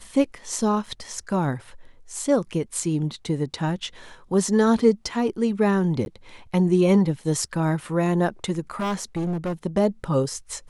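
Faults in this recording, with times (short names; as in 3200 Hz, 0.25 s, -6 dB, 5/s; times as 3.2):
0.86 gap 3.8 ms
6.05–6.06 gap
8.79–9.53 clipped -22.5 dBFS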